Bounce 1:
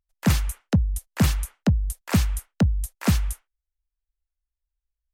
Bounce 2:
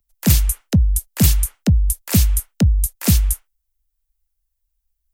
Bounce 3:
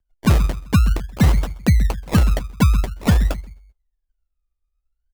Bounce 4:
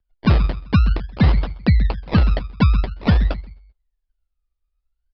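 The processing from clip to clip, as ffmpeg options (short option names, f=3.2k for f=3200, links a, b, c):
-filter_complex "[0:a]lowshelf=f=65:g=8.5,acrossover=split=140|660|2000[a][b][c][d];[c]acompressor=threshold=-44dB:ratio=6[e];[d]aemphasis=mode=production:type=50kf[f];[a][b][e][f]amix=inputs=4:normalize=0,volume=3dB"
-filter_complex "[0:a]adynamicsmooth=sensitivity=7.5:basefreq=1.8k,asplit=2[a][b];[b]adelay=129,lowpass=f=1.2k:p=1,volume=-12.5dB,asplit=2[c][d];[d]adelay=129,lowpass=f=1.2k:p=1,volume=0.34,asplit=2[e][f];[f]adelay=129,lowpass=f=1.2k:p=1,volume=0.34[g];[a][c][e][g]amix=inputs=4:normalize=0,acrusher=samples=28:mix=1:aa=0.000001:lfo=1:lforange=16.8:lforate=0.49"
-af "aresample=11025,aresample=44100"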